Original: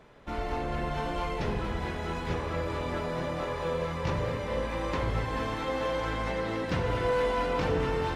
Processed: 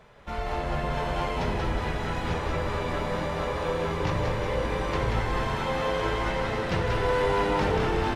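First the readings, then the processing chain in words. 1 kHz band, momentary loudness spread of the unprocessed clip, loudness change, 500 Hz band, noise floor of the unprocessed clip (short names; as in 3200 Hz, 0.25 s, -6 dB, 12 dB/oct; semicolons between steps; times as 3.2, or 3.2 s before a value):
+4.0 dB, 5 LU, +3.0 dB, +2.5 dB, -35 dBFS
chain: bell 300 Hz -13 dB 0.48 oct; on a send: frequency-shifting echo 0.184 s, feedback 58%, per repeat -96 Hz, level -4 dB; on the sum: gain +2.5 dB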